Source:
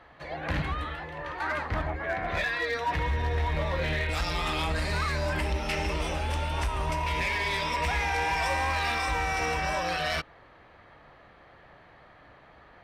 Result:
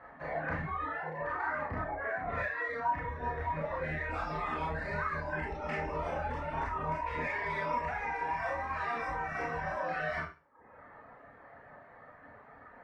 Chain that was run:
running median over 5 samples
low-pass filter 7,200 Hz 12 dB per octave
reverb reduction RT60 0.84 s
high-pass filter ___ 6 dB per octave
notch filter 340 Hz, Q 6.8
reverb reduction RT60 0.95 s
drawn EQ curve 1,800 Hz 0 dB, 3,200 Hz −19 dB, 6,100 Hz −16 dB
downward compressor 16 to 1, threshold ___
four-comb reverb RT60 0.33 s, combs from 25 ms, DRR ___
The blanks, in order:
110 Hz, −36 dBFS, −4 dB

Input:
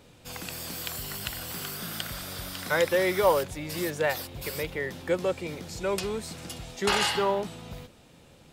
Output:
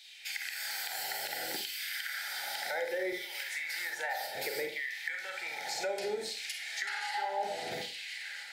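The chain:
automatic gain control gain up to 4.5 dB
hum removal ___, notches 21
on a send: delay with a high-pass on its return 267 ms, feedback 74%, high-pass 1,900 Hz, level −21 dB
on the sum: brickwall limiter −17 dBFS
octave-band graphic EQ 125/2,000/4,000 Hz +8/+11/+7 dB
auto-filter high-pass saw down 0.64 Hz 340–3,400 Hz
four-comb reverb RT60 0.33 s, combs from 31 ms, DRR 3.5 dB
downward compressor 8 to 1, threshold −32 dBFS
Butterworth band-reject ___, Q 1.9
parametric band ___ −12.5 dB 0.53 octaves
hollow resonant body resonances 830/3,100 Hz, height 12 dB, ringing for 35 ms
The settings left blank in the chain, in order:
87.59 Hz, 1,100 Hz, 3,000 Hz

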